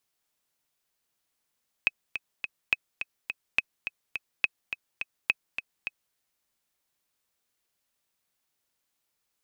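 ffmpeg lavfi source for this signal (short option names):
-f lavfi -i "aevalsrc='pow(10,(-8.5-9.5*gte(mod(t,3*60/210),60/210))/20)*sin(2*PI*2550*mod(t,60/210))*exp(-6.91*mod(t,60/210)/0.03)':d=4.28:s=44100"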